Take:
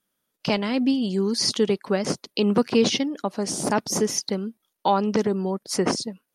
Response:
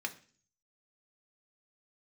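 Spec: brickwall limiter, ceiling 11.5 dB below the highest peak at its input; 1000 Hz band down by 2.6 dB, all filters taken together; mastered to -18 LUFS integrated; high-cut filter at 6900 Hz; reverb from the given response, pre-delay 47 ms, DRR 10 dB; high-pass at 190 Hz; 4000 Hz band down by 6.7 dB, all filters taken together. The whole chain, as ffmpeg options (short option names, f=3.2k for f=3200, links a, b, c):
-filter_complex "[0:a]highpass=190,lowpass=6.9k,equalizer=f=1k:t=o:g=-3,equalizer=f=4k:t=o:g=-8.5,alimiter=limit=-20dB:level=0:latency=1,asplit=2[a][b];[1:a]atrim=start_sample=2205,adelay=47[c];[b][c]afir=irnorm=-1:irlink=0,volume=-12dB[d];[a][d]amix=inputs=2:normalize=0,volume=12dB"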